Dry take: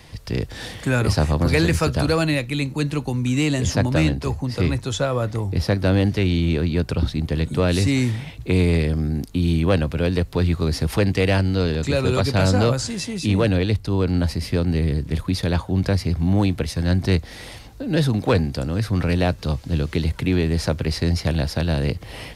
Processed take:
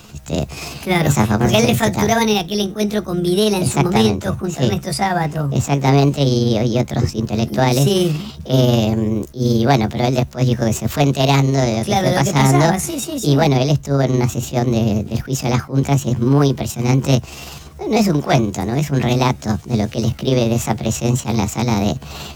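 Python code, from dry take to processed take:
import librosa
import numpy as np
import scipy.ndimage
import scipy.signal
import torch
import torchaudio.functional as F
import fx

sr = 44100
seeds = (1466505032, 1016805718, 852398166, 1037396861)

y = fx.pitch_heads(x, sr, semitones=6.0)
y = fx.attack_slew(y, sr, db_per_s=260.0)
y = y * librosa.db_to_amplitude(5.5)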